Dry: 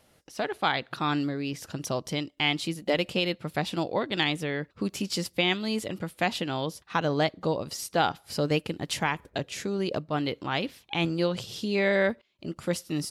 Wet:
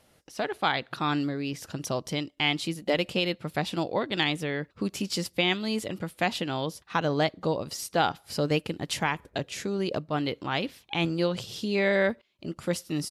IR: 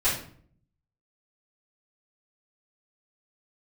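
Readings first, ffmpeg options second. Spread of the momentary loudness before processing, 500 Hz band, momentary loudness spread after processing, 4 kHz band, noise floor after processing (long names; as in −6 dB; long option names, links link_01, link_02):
7 LU, 0.0 dB, 7 LU, 0.0 dB, −64 dBFS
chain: -af "aresample=32000,aresample=44100"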